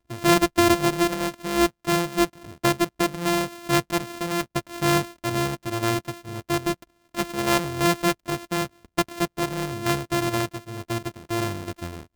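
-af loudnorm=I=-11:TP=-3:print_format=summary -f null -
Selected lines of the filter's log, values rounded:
Input Integrated:    -25.2 LUFS
Input True Peak:      -5.3 dBTP
Input LRA:             4.5 LU
Input Threshold:     -35.4 LUFS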